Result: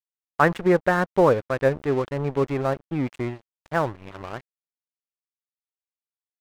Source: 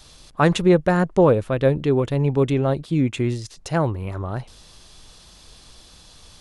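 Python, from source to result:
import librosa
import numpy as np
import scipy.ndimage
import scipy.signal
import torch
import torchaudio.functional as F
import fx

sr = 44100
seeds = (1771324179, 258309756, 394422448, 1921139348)

y = fx.curve_eq(x, sr, hz=(170.0, 1800.0, 5500.0), db=(0, 10, -17))
y = np.sign(y) * np.maximum(np.abs(y) - 10.0 ** (-27.5 / 20.0), 0.0)
y = y * librosa.db_to_amplitude(-5.5)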